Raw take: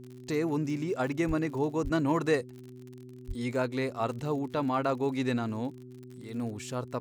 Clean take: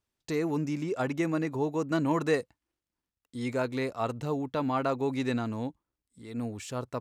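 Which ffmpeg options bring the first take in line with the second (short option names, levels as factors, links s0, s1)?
-filter_complex "[0:a]adeclick=t=4,bandreject=f=125.7:t=h:w=4,bandreject=f=251.4:t=h:w=4,bandreject=f=377.1:t=h:w=4,asplit=3[s0][s1][s2];[s0]afade=t=out:st=1.27:d=0.02[s3];[s1]highpass=f=140:w=0.5412,highpass=f=140:w=1.3066,afade=t=in:st=1.27:d=0.02,afade=t=out:st=1.39:d=0.02[s4];[s2]afade=t=in:st=1.39:d=0.02[s5];[s3][s4][s5]amix=inputs=3:normalize=0,asplit=3[s6][s7][s8];[s6]afade=t=out:st=1.83:d=0.02[s9];[s7]highpass=f=140:w=0.5412,highpass=f=140:w=1.3066,afade=t=in:st=1.83:d=0.02,afade=t=out:st=1.95:d=0.02[s10];[s8]afade=t=in:st=1.95:d=0.02[s11];[s9][s10][s11]amix=inputs=3:normalize=0,asplit=3[s12][s13][s14];[s12]afade=t=out:st=3.27:d=0.02[s15];[s13]highpass=f=140:w=0.5412,highpass=f=140:w=1.3066,afade=t=in:st=3.27:d=0.02,afade=t=out:st=3.39:d=0.02[s16];[s14]afade=t=in:st=3.39:d=0.02[s17];[s15][s16][s17]amix=inputs=3:normalize=0"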